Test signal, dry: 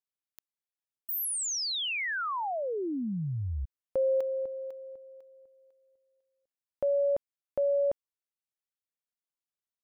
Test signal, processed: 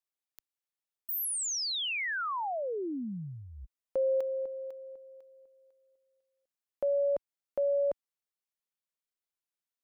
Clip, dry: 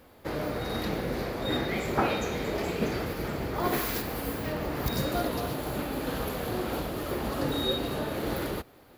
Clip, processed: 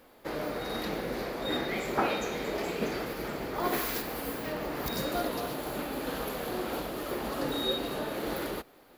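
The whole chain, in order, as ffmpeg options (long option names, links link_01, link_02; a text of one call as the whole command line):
ffmpeg -i in.wav -af "equalizer=frequency=87:width_type=o:width=1.4:gain=-14,volume=-1dB" out.wav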